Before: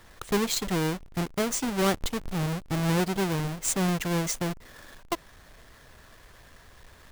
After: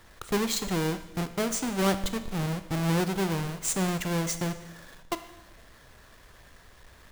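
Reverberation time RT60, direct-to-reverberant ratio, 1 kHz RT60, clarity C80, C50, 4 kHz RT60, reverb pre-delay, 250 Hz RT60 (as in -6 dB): 1.1 s, 10.0 dB, 1.1 s, 14.0 dB, 12.0 dB, 1.1 s, 22 ms, 1.1 s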